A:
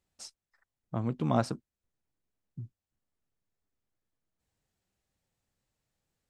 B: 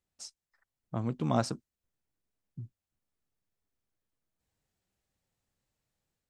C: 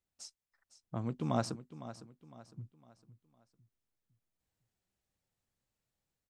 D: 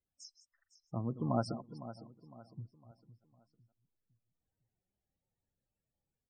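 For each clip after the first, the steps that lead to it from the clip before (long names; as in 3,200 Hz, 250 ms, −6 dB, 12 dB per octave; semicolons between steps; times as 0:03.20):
dynamic equaliser 6,500 Hz, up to +7 dB, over −60 dBFS, Q 1; automatic gain control gain up to 4.5 dB; level −5.5 dB
repeating echo 507 ms, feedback 39%, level −14 dB; level −4 dB
delay that plays each chunk backwards 162 ms, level −13 dB; spectral peaks only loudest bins 32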